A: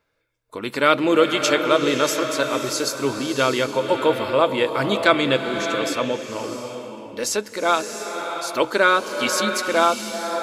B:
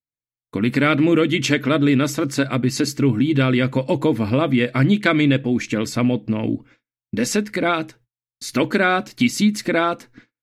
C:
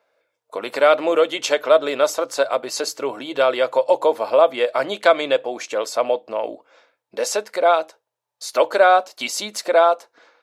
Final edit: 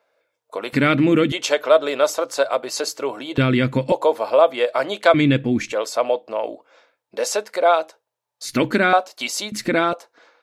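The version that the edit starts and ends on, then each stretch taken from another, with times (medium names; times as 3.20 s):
C
0.73–1.32 s: from B
3.38–3.92 s: from B
5.14–5.72 s: from B
8.45–8.93 s: from B
9.52–9.93 s: from B
not used: A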